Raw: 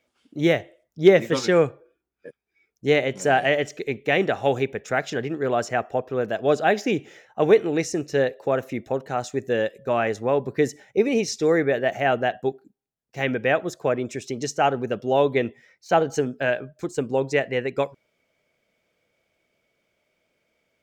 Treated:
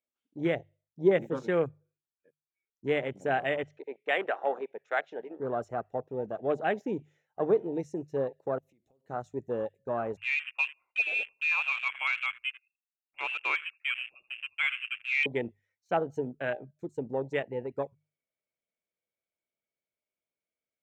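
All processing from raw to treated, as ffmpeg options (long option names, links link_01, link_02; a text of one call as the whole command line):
ffmpeg -i in.wav -filter_complex "[0:a]asettb=1/sr,asplit=3[link_01][link_02][link_03];[link_01]atrim=end=3.644[link_04];[link_02]atrim=start=3.64:end=5.4,asetpts=PTS-STARTPTS,afade=type=in:duration=0.004:curve=qsin,afade=type=out:start_time=1.756:duration=0.004:curve=qsin,aemphasis=mode=reproduction:type=50fm,acontrast=34,highpass=620,lowpass=4800[link_05];[link_03]atrim=start=5.396[link_06];[link_04][link_05]acrossfade=duration=0.004:curve1=hsin:curve2=qsin[link_07];[link_07][link_06]acrossfade=duration=0.004:curve1=qsin:curve2=hsin,asettb=1/sr,asplit=3[link_08][link_09][link_10];[link_08]atrim=end=8.584[link_11];[link_09]atrim=start=8.58:end=9.05,asetpts=PTS-STARTPTS,afade=type=in:duration=0.004:curve=qsin,afade=type=out:start_time=0.466:duration=0.004:curve=qsin,acompressor=threshold=-38dB:ratio=12:attack=3.2:release=140:knee=1:detection=peak,equalizer=frequency=1500:width_type=o:width=0.98:gain=-13[link_12];[link_10]atrim=start=9.046[link_13];[link_11][link_12]acrossfade=duration=0.004:curve1=hsin:curve2=qsin[link_14];[link_14][link_13]acrossfade=duration=0.004:curve1=qsin:curve2=hsin,asettb=1/sr,asplit=3[link_15][link_16][link_17];[link_15]atrim=end=10.174[link_18];[link_16]atrim=start=10.17:end=15.26,asetpts=PTS-STARTPTS,afade=type=in:duration=0.004:curve=qsin,afade=type=out:start_time=5.086:duration=0.004:curve=qsin,highpass=frequency=41:width=0.5412,highpass=frequency=41:width=1.3066,aecho=1:1:82|164:0.15|0.0314,atrim=end_sample=224469,lowpass=frequency=2500:width_type=q:width=0.5098,lowpass=frequency=2500:width_type=q:width=0.6013,lowpass=frequency=2500:width_type=q:width=0.9,lowpass=frequency=2500:width_type=q:width=2.563,afreqshift=-2900[link_19];[link_17]atrim=start=15.256[link_20];[link_18][link_19]acrossfade=duration=0.004:curve1=hsin:curve2=qsin[link_21];[link_21][link_20]acrossfade=duration=0.004:curve1=qsin:curve2=hsin,afwtdn=0.0447,equalizer=frequency=4900:width=5.7:gain=-8,bandreject=frequency=50:width_type=h:width=6,bandreject=frequency=100:width_type=h:width=6,bandreject=frequency=150:width_type=h:width=6,volume=-9dB" out.wav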